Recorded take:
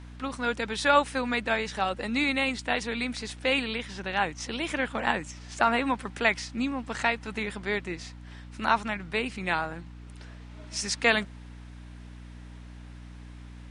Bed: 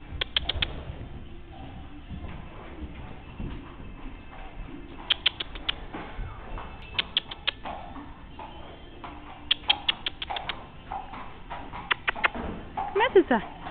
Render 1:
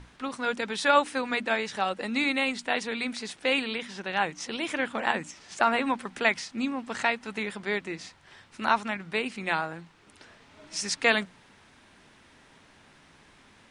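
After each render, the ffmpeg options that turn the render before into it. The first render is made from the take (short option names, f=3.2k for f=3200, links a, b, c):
-af "bandreject=f=60:t=h:w=6,bandreject=f=120:t=h:w=6,bandreject=f=180:t=h:w=6,bandreject=f=240:t=h:w=6,bandreject=f=300:t=h:w=6"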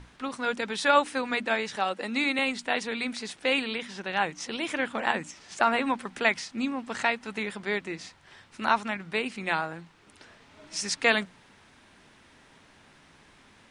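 -filter_complex "[0:a]asettb=1/sr,asplit=3[a][b][c];[a]atrim=end=1.764[d];[b]atrim=start=1.76:end=2.39,asetpts=PTS-STARTPTS,afade=t=in:d=0.004:c=qsin,afade=t=out:st=0.626:d=0.004:c=qsin,highpass=190[e];[c]atrim=start=2.386[f];[d][e]acrossfade=d=0.004:c1=hsin:c2=qsin[g];[g][f]acrossfade=d=0.004:c1=qsin:c2=hsin"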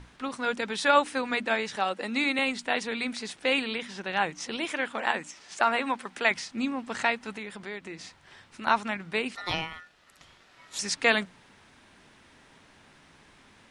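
-filter_complex "[0:a]asettb=1/sr,asplit=3[a][b][c];[a]atrim=end=4.654[d];[b]atrim=start=4.65:end=6.31,asetpts=PTS-STARTPTS,afade=t=in:d=0.004:c=qsin,afade=t=out:st=1.656:d=0.004:c=qsin,lowshelf=f=230:g=-10.5[e];[c]atrim=start=6.306[f];[d][e]acrossfade=d=0.004:c1=hsin:c2=qsin[g];[g][f]acrossfade=d=0.004:c1=qsin:c2=hsin,asettb=1/sr,asplit=3[h][i][j];[h]atrim=end=7.344[k];[i]atrim=start=7.34:end=8.67,asetpts=PTS-STARTPTS,afade=t=in:d=0.004:c=qsin,afade=t=out:st=1.326:d=0.004:c=qsin,acompressor=threshold=-39dB:ratio=2:attack=3.2:release=140:knee=1:detection=peak[l];[j]atrim=start=8.666[m];[k][l]acrossfade=d=0.004:c1=hsin:c2=qsin[n];[n][m]acrossfade=d=0.004:c1=qsin:c2=hsin,asettb=1/sr,asplit=3[o][p][q];[o]atrim=end=9.354[r];[p]atrim=start=9.35:end=10.79,asetpts=PTS-STARTPTS,afade=t=in:d=0.004:c=qsin,afade=t=out:st=1.436:d=0.004:c=qsin,aeval=exprs='val(0)*sin(2*PI*1600*n/s)':c=same[s];[q]atrim=start=10.786[t];[r][s]acrossfade=d=0.004:c1=hsin:c2=qsin[u];[u][t]acrossfade=d=0.004:c1=qsin:c2=hsin"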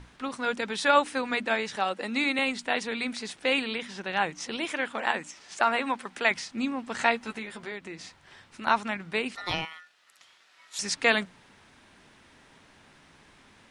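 -filter_complex "[0:a]asettb=1/sr,asplit=3[a][b][c];[a]atrim=end=6.974[d];[b]atrim=start=6.97:end=7.72,asetpts=PTS-STARTPTS,afade=t=in:d=0.004:c=qsin,afade=t=out:st=0.746:d=0.004:c=qsin,asplit=2[e][f];[f]adelay=13,volume=-4.5dB[g];[e][g]amix=inputs=2:normalize=0,atrim=end_sample=33075[h];[c]atrim=start=7.716[i];[d][h]acrossfade=d=0.004:c1=hsin:c2=qsin[j];[j][i]acrossfade=d=0.004:c1=qsin:c2=hsin,asettb=1/sr,asplit=3[k][l][m];[k]atrim=end=9.654[n];[l]atrim=start=9.65:end=10.79,asetpts=PTS-STARTPTS,afade=t=in:d=0.004:c=qsin,afade=t=out:st=1.136:d=0.004:c=qsin,highpass=f=1.4k:p=1[o];[m]atrim=start=10.786[p];[n][o]acrossfade=d=0.004:c1=hsin:c2=qsin[q];[q][p]acrossfade=d=0.004:c1=qsin:c2=hsin"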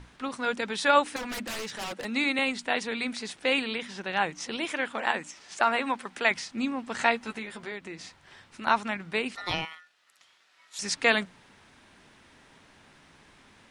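-filter_complex "[0:a]asettb=1/sr,asplit=3[a][b][c];[a]atrim=end=1.164[d];[b]atrim=start=1.16:end=2.05,asetpts=PTS-STARTPTS,afade=t=in:d=0.004:c=qsin,afade=t=out:st=0.886:d=0.004:c=qsin,aeval=exprs='0.0335*(abs(mod(val(0)/0.0335+3,4)-2)-1)':c=same[e];[c]atrim=start=2.046[f];[d][e]acrossfade=d=0.004:c1=hsin:c2=qsin[g];[g][f]acrossfade=d=0.004:c1=qsin:c2=hsin,asplit=3[h][i][j];[h]atrim=end=9.752[k];[i]atrim=start=9.748:end=10.822,asetpts=PTS-STARTPTS,volume=-3.5dB[l];[j]atrim=start=10.818[m];[k][l]acrossfade=d=0.004:c1=hsin:c2=hsin[n];[n][m]acrossfade=d=0.004:c1=hsin:c2=hsin"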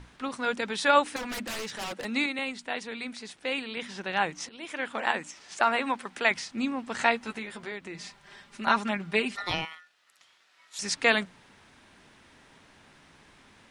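-filter_complex "[0:a]asettb=1/sr,asplit=3[a][b][c];[a]atrim=end=7.944[d];[b]atrim=start=7.94:end=9.43,asetpts=PTS-STARTPTS,afade=t=in:d=0.004:c=qsin,afade=t=out:st=1.486:d=0.004:c=qsin,aecho=1:1:5:0.74,atrim=end_sample=65709[e];[c]atrim=start=9.426[f];[d][e]acrossfade=d=0.004:c1=hsin:c2=qsin[g];[g][f]acrossfade=d=0.004:c1=qsin:c2=hsin,asplit=4[h][i][j][k];[h]atrim=end=2.262[l];[i]atrim=start=2.258:end=3.772,asetpts=PTS-STARTPTS,volume=-5.5dB[m];[j]atrim=start=3.768:end=4.49,asetpts=PTS-STARTPTS,afade=t=out:st=0.718:d=0.004:c=hsin:silence=0.0794328[n];[k]atrim=start=4.49,asetpts=PTS-STARTPTS,afade=t=in:d=0.46:silence=0.0794328[o];[l][m]acrossfade=d=0.004:c1=hsin:c2=hsin[p];[n][o]concat=n=2:v=0:a=1[q];[p][q]acrossfade=d=0.004:c1=hsin:c2=hsin"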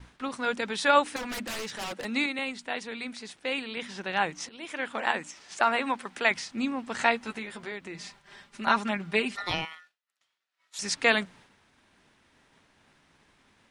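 -af "agate=range=-33dB:threshold=-50dB:ratio=3:detection=peak"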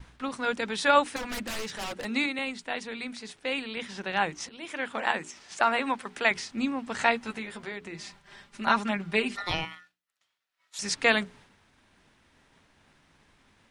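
-af "lowshelf=f=110:g=7,bandreject=f=60:t=h:w=6,bandreject=f=120:t=h:w=6,bandreject=f=180:t=h:w=6,bandreject=f=240:t=h:w=6,bandreject=f=300:t=h:w=6,bandreject=f=360:t=h:w=6,bandreject=f=420:t=h:w=6"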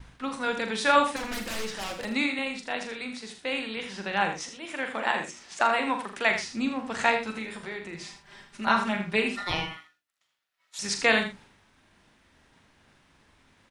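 -filter_complex "[0:a]asplit=2[a][b];[b]adelay=41,volume=-8dB[c];[a][c]amix=inputs=2:normalize=0,aecho=1:1:80:0.355"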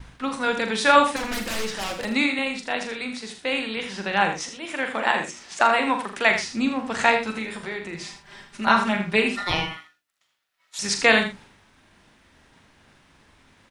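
-af "volume=5dB,alimiter=limit=-2dB:level=0:latency=1"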